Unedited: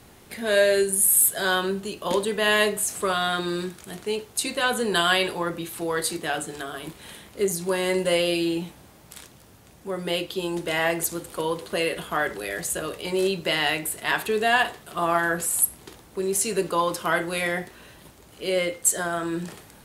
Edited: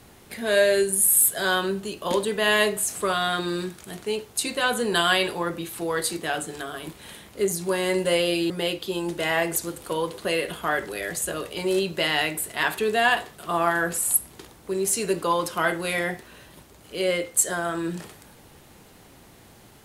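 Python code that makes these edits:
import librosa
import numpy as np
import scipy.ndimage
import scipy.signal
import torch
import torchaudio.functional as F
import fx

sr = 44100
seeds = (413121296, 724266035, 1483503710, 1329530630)

y = fx.edit(x, sr, fx.cut(start_s=8.5, length_s=1.48), tone=tone)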